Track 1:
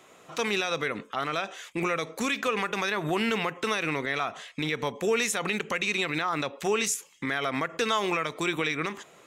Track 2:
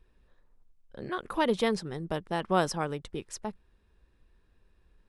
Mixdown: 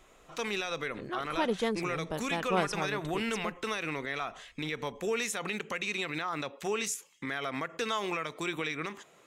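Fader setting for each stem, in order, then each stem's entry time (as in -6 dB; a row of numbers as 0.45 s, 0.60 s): -6.0 dB, -3.5 dB; 0.00 s, 0.00 s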